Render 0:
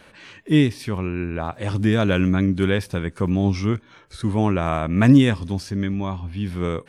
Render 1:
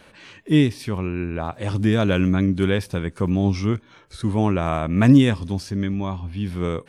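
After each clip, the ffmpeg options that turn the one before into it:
-af "equalizer=f=1.7k:w=1.5:g=-2"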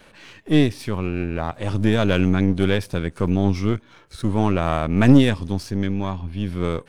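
-af "aeval=exprs='if(lt(val(0),0),0.447*val(0),val(0))':c=same,volume=2.5dB"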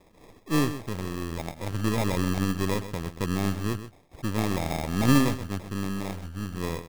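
-af "acrusher=samples=30:mix=1:aa=0.000001,aecho=1:1:128:0.251,volume=-8dB"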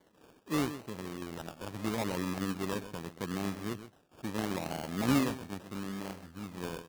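-af "highpass=160,lowpass=4.4k,acrusher=samples=17:mix=1:aa=0.000001:lfo=1:lforange=10.2:lforate=0.78,volume=-6dB"

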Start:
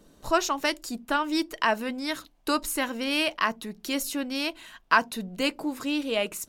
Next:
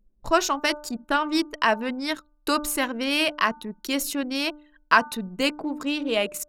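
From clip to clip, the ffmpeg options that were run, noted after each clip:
-af "anlmdn=1.58,bandreject=f=297.9:t=h:w=4,bandreject=f=595.8:t=h:w=4,bandreject=f=893.7:t=h:w=4,bandreject=f=1.1916k:t=h:w=4,bandreject=f=1.4895k:t=h:w=4,volume=3dB"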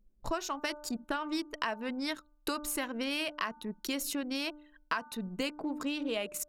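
-af "acompressor=threshold=-28dB:ratio=6,volume=-3dB"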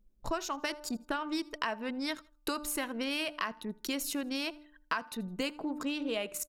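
-af "aecho=1:1:81|162:0.0631|0.0215"

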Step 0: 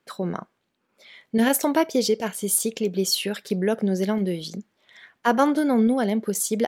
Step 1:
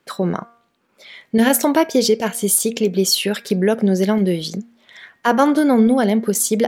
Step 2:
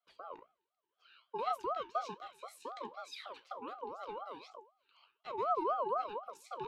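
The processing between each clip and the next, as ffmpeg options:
-filter_complex "[0:a]bandreject=f=234.1:t=h:w=4,bandreject=f=468.2:t=h:w=4,bandreject=f=702.3:t=h:w=4,bandreject=f=936.4:t=h:w=4,bandreject=f=1.1705k:t=h:w=4,bandreject=f=1.4046k:t=h:w=4,bandreject=f=1.6387k:t=h:w=4,bandreject=f=1.8728k:t=h:w=4,bandreject=f=2.1069k:t=h:w=4,bandreject=f=2.341k:t=h:w=4,bandreject=f=2.5751k:t=h:w=4,asplit=2[a][b];[b]alimiter=limit=-16.5dB:level=0:latency=1:release=220,volume=-1.5dB[c];[a][c]amix=inputs=2:normalize=0,volume=2.5dB"
-filter_complex "[0:a]flanger=delay=8.1:depth=9.8:regen=66:speed=1.3:shape=sinusoidal,asplit=3[a][b][c];[a]bandpass=f=270:t=q:w=8,volume=0dB[d];[b]bandpass=f=2.29k:t=q:w=8,volume=-6dB[e];[c]bandpass=f=3.01k:t=q:w=8,volume=-9dB[f];[d][e][f]amix=inputs=3:normalize=0,aeval=exprs='val(0)*sin(2*PI*820*n/s+820*0.25/4*sin(2*PI*4*n/s))':c=same,volume=-6dB"

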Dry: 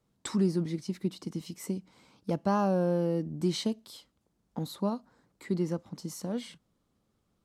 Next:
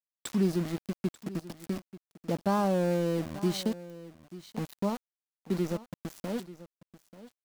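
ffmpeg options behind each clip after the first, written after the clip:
-af "aeval=exprs='val(0)*gte(abs(val(0)),0.0168)':c=same,aecho=1:1:888:0.15"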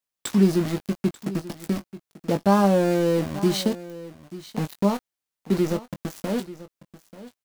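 -filter_complex "[0:a]asplit=2[a][b];[b]adelay=20,volume=-9dB[c];[a][c]amix=inputs=2:normalize=0,volume=7.5dB"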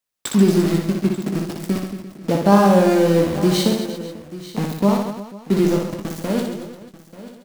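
-af "aecho=1:1:60|135|228.8|345.9|492.4:0.631|0.398|0.251|0.158|0.1,volume=3.5dB"

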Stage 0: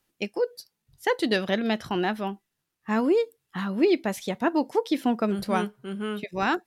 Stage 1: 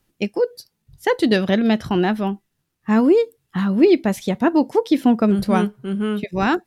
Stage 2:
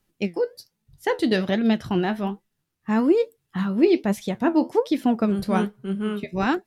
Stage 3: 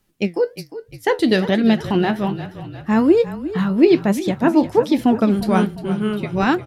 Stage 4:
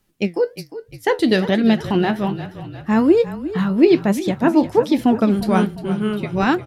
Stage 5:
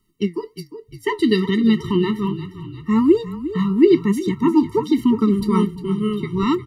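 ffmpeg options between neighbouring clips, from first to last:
-af "lowshelf=f=290:g=10.5,volume=3.5dB"
-af "flanger=delay=4.6:depth=8.2:regen=67:speed=1.2:shape=sinusoidal"
-filter_complex "[0:a]asplit=6[a][b][c][d][e][f];[b]adelay=353,afreqshift=-31,volume=-13.5dB[g];[c]adelay=706,afreqshift=-62,volume=-18.9dB[h];[d]adelay=1059,afreqshift=-93,volume=-24.2dB[i];[e]adelay=1412,afreqshift=-124,volume=-29.6dB[j];[f]adelay=1765,afreqshift=-155,volume=-34.9dB[k];[a][g][h][i][j][k]amix=inputs=6:normalize=0,volume=5dB"
-af anull
-af "afftfilt=real='re*eq(mod(floor(b*sr/1024/450),2),0)':imag='im*eq(mod(floor(b*sr/1024/450),2),0)':win_size=1024:overlap=0.75"

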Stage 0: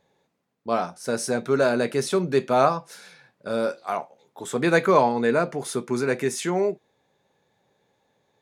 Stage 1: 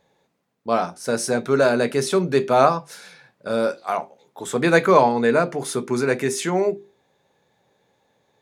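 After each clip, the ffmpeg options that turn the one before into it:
-af "bandreject=f=50:t=h:w=6,bandreject=f=100:t=h:w=6,bandreject=f=150:t=h:w=6,bandreject=f=200:t=h:w=6,bandreject=f=250:t=h:w=6,bandreject=f=300:t=h:w=6,bandreject=f=350:t=h:w=6,bandreject=f=400:t=h:w=6,volume=3.5dB"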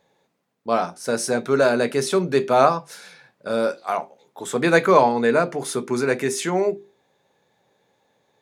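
-af "lowshelf=f=85:g=-8.5"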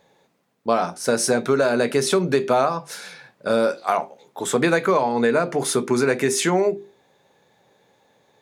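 -af "acompressor=threshold=-20dB:ratio=12,volume=5.5dB"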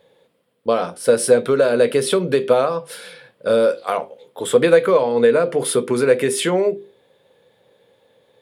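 -af "equalizer=f=100:t=o:w=0.33:g=6,equalizer=f=500:t=o:w=0.33:g=12,equalizer=f=800:t=o:w=0.33:g=-5,equalizer=f=3.15k:t=o:w=0.33:g=8,equalizer=f=6.3k:t=o:w=0.33:g=-11,equalizer=f=10k:t=o:w=0.33:g=6,volume=-1dB"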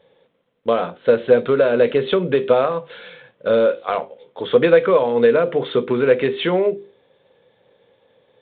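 -ar 8000 -c:a adpcm_g726 -b:a 32k

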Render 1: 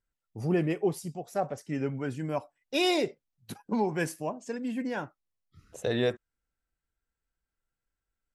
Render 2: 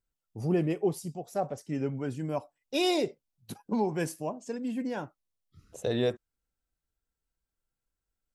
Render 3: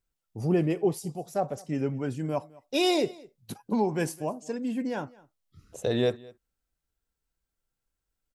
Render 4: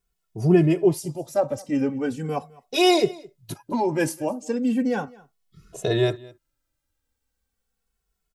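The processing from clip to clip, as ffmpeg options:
-af "equalizer=f=1.8k:w=1.1:g=-6"
-af "aecho=1:1:210:0.0708,volume=2.5dB"
-filter_complex "[0:a]asplit=2[a][b];[b]adelay=2.3,afreqshift=-0.37[c];[a][c]amix=inputs=2:normalize=1,volume=8.5dB"

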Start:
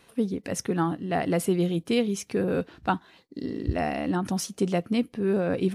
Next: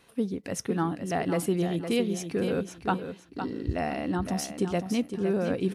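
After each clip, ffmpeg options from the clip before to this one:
-af "aecho=1:1:510|1020|1530:0.376|0.0902|0.0216,volume=-2.5dB"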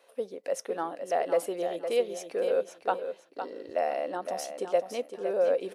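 -af "highpass=f=550:t=q:w=4.9,volume=-5dB"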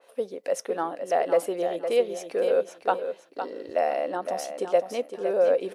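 -af "adynamicequalizer=threshold=0.00501:dfrequency=2700:dqfactor=0.7:tfrequency=2700:tqfactor=0.7:attack=5:release=100:ratio=0.375:range=2:mode=cutabove:tftype=highshelf,volume=4dB"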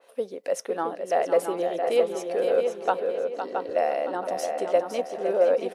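-filter_complex "[0:a]asplit=2[a][b];[b]adelay=670,lowpass=f=2.5k:p=1,volume=-5.5dB,asplit=2[c][d];[d]adelay=670,lowpass=f=2.5k:p=1,volume=0.37,asplit=2[e][f];[f]adelay=670,lowpass=f=2.5k:p=1,volume=0.37,asplit=2[g][h];[h]adelay=670,lowpass=f=2.5k:p=1,volume=0.37[i];[a][c][e][g][i]amix=inputs=5:normalize=0"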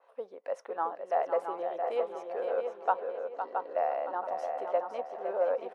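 -af "bandpass=f=980:t=q:w=1.9:csg=0"

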